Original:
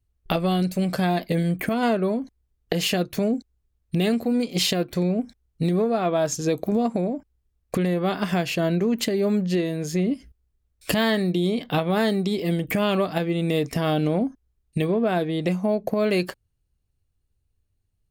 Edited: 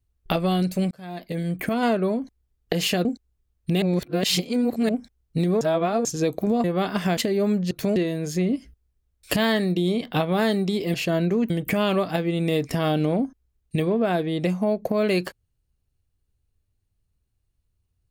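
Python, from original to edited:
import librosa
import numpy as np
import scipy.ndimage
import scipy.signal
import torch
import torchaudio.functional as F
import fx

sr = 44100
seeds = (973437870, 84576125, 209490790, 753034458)

y = fx.edit(x, sr, fx.fade_in_span(start_s=0.91, length_s=0.85),
    fx.move(start_s=3.05, length_s=0.25, to_s=9.54),
    fx.reverse_span(start_s=4.07, length_s=1.07),
    fx.reverse_span(start_s=5.86, length_s=0.44),
    fx.cut(start_s=6.89, length_s=1.02),
    fx.move(start_s=8.44, length_s=0.56, to_s=12.52), tone=tone)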